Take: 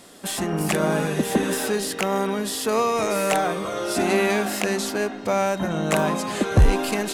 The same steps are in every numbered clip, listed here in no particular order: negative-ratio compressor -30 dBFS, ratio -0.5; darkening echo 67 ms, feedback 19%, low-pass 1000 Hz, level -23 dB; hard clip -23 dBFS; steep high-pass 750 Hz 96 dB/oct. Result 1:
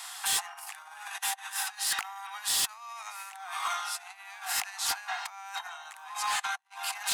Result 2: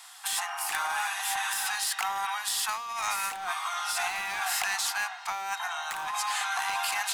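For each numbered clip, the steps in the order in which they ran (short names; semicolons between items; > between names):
darkening echo > negative-ratio compressor > steep high-pass > hard clip; steep high-pass > hard clip > negative-ratio compressor > darkening echo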